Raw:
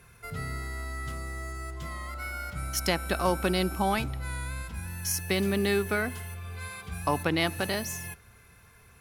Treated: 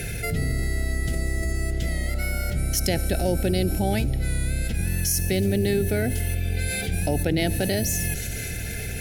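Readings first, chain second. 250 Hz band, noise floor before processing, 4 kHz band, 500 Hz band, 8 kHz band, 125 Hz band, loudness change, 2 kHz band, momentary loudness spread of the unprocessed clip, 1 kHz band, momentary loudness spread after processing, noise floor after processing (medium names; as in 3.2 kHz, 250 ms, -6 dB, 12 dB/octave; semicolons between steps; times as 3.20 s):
+5.5 dB, -56 dBFS, +2.5 dB, +4.0 dB, +8.0 dB, +10.5 dB, +5.5 dB, +2.0 dB, 12 LU, -4.0 dB, 5 LU, -30 dBFS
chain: octave divider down 1 oct, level -2 dB; feedback echo behind a high-pass 73 ms, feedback 83%, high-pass 4.5 kHz, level -22.5 dB; dynamic bell 2.6 kHz, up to -6 dB, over -44 dBFS, Q 0.71; Butterworth band-stop 1.1 kHz, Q 1.1; level flattener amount 70%; trim +2.5 dB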